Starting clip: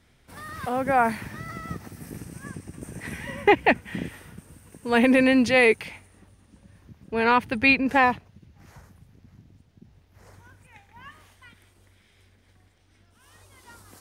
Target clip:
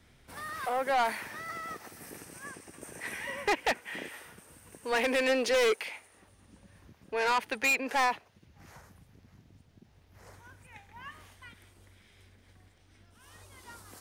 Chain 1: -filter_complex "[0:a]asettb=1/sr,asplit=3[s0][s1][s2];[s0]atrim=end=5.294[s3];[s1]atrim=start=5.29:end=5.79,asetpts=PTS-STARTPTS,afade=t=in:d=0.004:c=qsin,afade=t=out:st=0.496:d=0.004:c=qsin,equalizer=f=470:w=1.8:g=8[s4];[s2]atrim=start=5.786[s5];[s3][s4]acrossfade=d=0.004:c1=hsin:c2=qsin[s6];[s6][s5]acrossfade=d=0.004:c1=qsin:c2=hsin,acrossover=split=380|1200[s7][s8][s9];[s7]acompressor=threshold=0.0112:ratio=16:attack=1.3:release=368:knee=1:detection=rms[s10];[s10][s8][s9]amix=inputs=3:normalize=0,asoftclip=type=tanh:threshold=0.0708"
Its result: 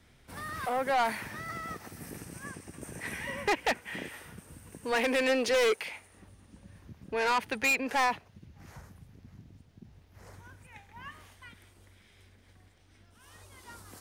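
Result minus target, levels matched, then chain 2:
compression: peak gain reduction -10.5 dB
-filter_complex "[0:a]asettb=1/sr,asplit=3[s0][s1][s2];[s0]atrim=end=5.294[s3];[s1]atrim=start=5.29:end=5.79,asetpts=PTS-STARTPTS,afade=t=in:d=0.004:c=qsin,afade=t=out:st=0.496:d=0.004:c=qsin,equalizer=f=470:w=1.8:g=8[s4];[s2]atrim=start=5.786[s5];[s3][s4]acrossfade=d=0.004:c1=hsin:c2=qsin[s6];[s6][s5]acrossfade=d=0.004:c1=qsin:c2=hsin,acrossover=split=380|1200[s7][s8][s9];[s7]acompressor=threshold=0.00316:ratio=16:attack=1.3:release=368:knee=1:detection=rms[s10];[s10][s8][s9]amix=inputs=3:normalize=0,asoftclip=type=tanh:threshold=0.0708"

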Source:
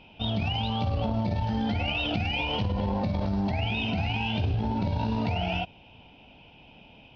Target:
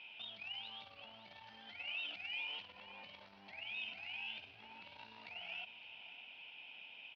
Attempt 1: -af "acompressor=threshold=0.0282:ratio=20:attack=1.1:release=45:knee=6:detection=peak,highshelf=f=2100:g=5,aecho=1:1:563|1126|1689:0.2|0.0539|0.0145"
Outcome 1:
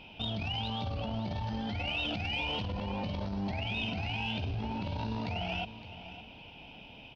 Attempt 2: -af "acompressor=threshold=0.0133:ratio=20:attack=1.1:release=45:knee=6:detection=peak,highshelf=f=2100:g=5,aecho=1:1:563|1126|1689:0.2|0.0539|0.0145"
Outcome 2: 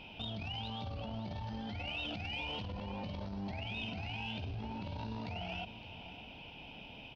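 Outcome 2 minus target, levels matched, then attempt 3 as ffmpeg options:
2 kHz band -4.5 dB
-af "acompressor=threshold=0.0133:ratio=20:attack=1.1:release=45:knee=6:detection=peak,bandpass=f=2300:t=q:w=1.5:csg=0,highshelf=f=2100:g=5,aecho=1:1:563|1126|1689:0.2|0.0539|0.0145"

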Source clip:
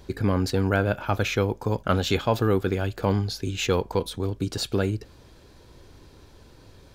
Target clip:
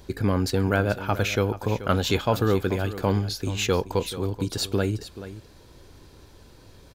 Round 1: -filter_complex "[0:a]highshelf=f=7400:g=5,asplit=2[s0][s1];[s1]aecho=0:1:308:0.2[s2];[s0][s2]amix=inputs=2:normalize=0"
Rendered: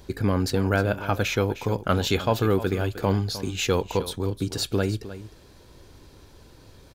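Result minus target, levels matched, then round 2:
echo 124 ms early
-filter_complex "[0:a]highshelf=f=7400:g=5,asplit=2[s0][s1];[s1]aecho=0:1:432:0.2[s2];[s0][s2]amix=inputs=2:normalize=0"

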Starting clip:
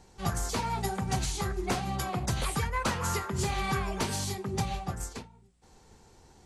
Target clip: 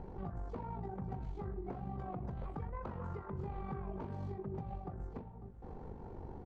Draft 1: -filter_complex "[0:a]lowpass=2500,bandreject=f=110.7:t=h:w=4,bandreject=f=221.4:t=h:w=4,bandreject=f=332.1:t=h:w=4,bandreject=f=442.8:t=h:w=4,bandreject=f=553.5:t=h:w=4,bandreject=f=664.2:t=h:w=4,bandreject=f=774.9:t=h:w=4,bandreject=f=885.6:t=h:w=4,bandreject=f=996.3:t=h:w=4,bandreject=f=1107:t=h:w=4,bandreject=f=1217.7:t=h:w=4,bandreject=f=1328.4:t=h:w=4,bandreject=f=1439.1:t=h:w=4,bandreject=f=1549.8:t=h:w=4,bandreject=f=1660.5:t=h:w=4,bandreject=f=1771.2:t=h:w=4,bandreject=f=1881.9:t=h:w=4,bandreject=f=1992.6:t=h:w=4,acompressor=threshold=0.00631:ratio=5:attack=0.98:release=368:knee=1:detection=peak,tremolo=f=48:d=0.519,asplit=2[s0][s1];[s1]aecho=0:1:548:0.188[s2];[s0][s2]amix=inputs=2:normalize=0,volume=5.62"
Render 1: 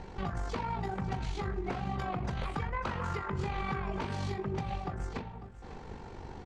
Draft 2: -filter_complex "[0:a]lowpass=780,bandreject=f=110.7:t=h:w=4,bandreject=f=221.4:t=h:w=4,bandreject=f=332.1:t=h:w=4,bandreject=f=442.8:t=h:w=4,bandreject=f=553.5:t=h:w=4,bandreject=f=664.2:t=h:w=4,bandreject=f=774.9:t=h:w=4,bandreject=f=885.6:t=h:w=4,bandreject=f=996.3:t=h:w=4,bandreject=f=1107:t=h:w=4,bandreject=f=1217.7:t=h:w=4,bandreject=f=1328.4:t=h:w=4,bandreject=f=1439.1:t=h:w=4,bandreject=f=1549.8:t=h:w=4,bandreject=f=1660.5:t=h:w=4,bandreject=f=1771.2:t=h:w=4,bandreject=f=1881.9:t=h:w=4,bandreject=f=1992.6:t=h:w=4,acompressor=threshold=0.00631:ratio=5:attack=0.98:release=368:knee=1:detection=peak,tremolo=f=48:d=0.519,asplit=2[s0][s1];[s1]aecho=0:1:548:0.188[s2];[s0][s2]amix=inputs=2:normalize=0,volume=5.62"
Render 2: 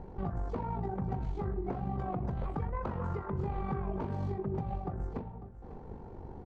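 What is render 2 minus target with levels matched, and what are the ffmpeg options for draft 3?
compression: peak gain reduction -7 dB
-filter_complex "[0:a]lowpass=780,bandreject=f=110.7:t=h:w=4,bandreject=f=221.4:t=h:w=4,bandreject=f=332.1:t=h:w=4,bandreject=f=442.8:t=h:w=4,bandreject=f=553.5:t=h:w=4,bandreject=f=664.2:t=h:w=4,bandreject=f=774.9:t=h:w=4,bandreject=f=885.6:t=h:w=4,bandreject=f=996.3:t=h:w=4,bandreject=f=1107:t=h:w=4,bandreject=f=1217.7:t=h:w=4,bandreject=f=1328.4:t=h:w=4,bandreject=f=1439.1:t=h:w=4,bandreject=f=1549.8:t=h:w=4,bandreject=f=1660.5:t=h:w=4,bandreject=f=1771.2:t=h:w=4,bandreject=f=1881.9:t=h:w=4,bandreject=f=1992.6:t=h:w=4,acompressor=threshold=0.00224:ratio=5:attack=0.98:release=368:knee=1:detection=peak,tremolo=f=48:d=0.519,asplit=2[s0][s1];[s1]aecho=0:1:548:0.188[s2];[s0][s2]amix=inputs=2:normalize=0,volume=5.62"

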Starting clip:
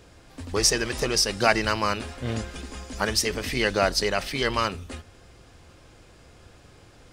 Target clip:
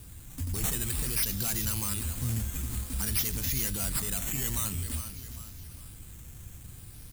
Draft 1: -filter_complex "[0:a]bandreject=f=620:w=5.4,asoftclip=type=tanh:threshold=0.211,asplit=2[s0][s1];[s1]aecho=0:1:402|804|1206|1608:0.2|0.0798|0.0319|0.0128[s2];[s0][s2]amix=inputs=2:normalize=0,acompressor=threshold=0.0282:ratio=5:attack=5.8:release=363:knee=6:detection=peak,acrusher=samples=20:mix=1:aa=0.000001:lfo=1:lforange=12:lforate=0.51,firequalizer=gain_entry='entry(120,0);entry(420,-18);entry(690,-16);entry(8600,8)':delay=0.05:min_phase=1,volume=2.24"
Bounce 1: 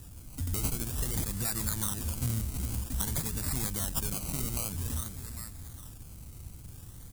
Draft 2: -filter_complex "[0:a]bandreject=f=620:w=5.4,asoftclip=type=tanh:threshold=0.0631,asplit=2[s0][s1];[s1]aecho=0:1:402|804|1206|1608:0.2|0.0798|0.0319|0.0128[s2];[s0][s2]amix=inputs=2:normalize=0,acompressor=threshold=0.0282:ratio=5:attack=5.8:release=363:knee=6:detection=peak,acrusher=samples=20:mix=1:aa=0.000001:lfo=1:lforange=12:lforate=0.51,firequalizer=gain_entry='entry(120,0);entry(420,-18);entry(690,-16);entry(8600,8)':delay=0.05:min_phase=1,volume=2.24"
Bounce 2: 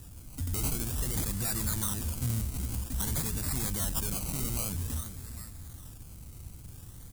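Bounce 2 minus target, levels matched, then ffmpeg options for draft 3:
decimation with a swept rate: distortion +5 dB
-filter_complex "[0:a]bandreject=f=620:w=5.4,asoftclip=type=tanh:threshold=0.0631,asplit=2[s0][s1];[s1]aecho=0:1:402|804|1206|1608:0.2|0.0798|0.0319|0.0128[s2];[s0][s2]amix=inputs=2:normalize=0,acompressor=threshold=0.0282:ratio=5:attack=5.8:release=363:knee=6:detection=peak,acrusher=samples=7:mix=1:aa=0.000001:lfo=1:lforange=4.2:lforate=0.51,firequalizer=gain_entry='entry(120,0);entry(420,-18);entry(690,-16);entry(8600,8)':delay=0.05:min_phase=1,volume=2.24"

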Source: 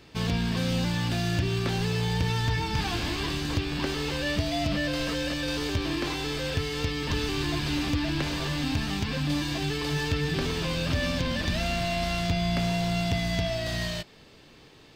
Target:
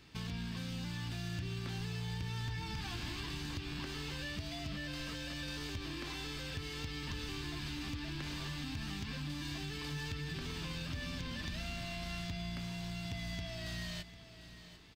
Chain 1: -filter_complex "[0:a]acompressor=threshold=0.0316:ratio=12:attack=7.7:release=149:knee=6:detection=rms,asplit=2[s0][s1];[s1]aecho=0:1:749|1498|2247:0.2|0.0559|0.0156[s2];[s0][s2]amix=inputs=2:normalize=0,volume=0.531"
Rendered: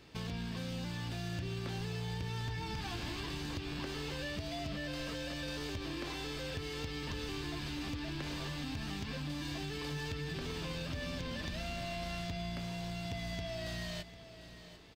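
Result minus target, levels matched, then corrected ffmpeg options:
500 Hz band +5.5 dB
-filter_complex "[0:a]acompressor=threshold=0.0316:ratio=12:attack=7.7:release=149:knee=6:detection=rms,equalizer=f=540:t=o:w=1.2:g=-8.5,asplit=2[s0][s1];[s1]aecho=0:1:749|1498|2247:0.2|0.0559|0.0156[s2];[s0][s2]amix=inputs=2:normalize=0,volume=0.531"

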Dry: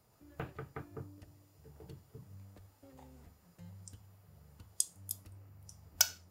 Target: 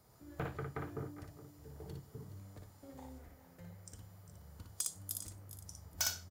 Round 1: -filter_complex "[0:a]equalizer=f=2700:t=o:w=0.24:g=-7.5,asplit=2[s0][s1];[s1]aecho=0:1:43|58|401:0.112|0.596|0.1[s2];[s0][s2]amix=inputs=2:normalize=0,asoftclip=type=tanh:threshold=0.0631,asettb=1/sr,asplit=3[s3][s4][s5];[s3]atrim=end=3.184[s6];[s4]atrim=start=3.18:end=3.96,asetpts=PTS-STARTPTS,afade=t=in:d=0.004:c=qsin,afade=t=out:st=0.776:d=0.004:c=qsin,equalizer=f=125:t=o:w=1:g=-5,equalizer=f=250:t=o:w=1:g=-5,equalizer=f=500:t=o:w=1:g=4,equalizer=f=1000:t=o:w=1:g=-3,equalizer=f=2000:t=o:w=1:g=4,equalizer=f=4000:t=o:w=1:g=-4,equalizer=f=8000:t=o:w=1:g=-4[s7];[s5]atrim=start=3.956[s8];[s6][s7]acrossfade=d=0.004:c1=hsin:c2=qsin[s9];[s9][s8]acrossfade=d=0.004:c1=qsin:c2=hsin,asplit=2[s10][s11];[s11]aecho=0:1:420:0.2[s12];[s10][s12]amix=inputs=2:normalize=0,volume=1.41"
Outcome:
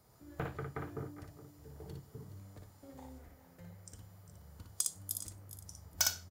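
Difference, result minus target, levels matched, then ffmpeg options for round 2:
saturation: distortion -4 dB
-filter_complex "[0:a]equalizer=f=2700:t=o:w=0.24:g=-7.5,asplit=2[s0][s1];[s1]aecho=0:1:43|58|401:0.112|0.596|0.1[s2];[s0][s2]amix=inputs=2:normalize=0,asoftclip=type=tanh:threshold=0.0282,asettb=1/sr,asplit=3[s3][s4][s5];[s3]atrim=end=3.184[s6];[s4]atrim=start=3.18:end=3.96,asetpts=PTS-STARTPTS,afade=t=in:d=0.004:c=qsin,afade=t=out:st=0.776:d=0.004:c=qsin,equalizer=f=125:t=o:w=1:g=-5,equalizer=f=250:t=o:w=1:g=-5,equalizer=f=500:t=o:w=1:g=4,equalizer=f=1000:t=o:w=1:g=-3,equalizer=f=2000:t=o:w=1:g=4,equalizer=f=4000:t=o:w=1:g=-4,equalizer=f=8000:t=o:w=1:g=-4[s7];[s5]atrim=start=3.956[s8];[s6][s7]acrossfade=d=0.004:c1=hsin:c2=qsin[s9];[s9][s8]acrossfade=d=0.004:c1=qsin:c2=hsin,asplit=2[s10][s11];[s11]aecho=0:1:420:0.2[s12];[s10][s12]amix=inputs=2:normalize=0,volume=1.41"

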